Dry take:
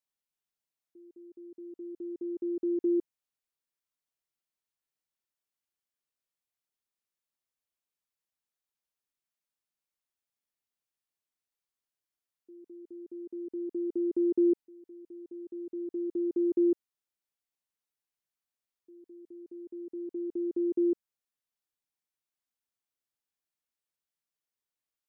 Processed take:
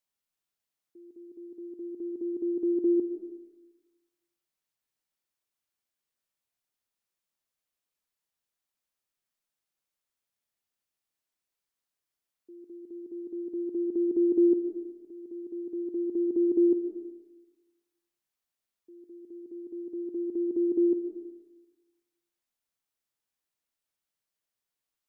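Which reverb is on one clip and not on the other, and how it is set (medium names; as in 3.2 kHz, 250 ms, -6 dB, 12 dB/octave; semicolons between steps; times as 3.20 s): algorithmic reverb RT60 1.2 s, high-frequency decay 0.85×, pre-delay 90 ms, DRR 7.5 dB; trim +2.5 dB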